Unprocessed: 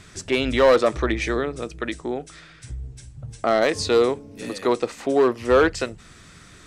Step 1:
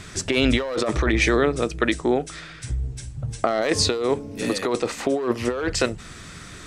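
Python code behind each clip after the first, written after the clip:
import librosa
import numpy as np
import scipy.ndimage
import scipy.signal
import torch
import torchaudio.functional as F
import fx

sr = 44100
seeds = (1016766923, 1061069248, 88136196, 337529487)

y = fx.over_compress(x, sr, threshold_db=-24.0, ratio=-1.0)
y = y * 10.0 ** (3.0 / 20.0)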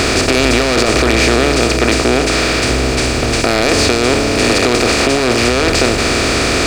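y = fx.bin_compress(x, sr, power=0.2)
y = fx.leveller(y, sr, passes=2)
y = y * 10.0 ** (-5.5 / 20.0)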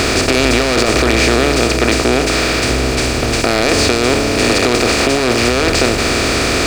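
y = np.sign(x) * np.maximum(np.abs(x) - 10.0 ** (-33.0 / 20.0), 0.0)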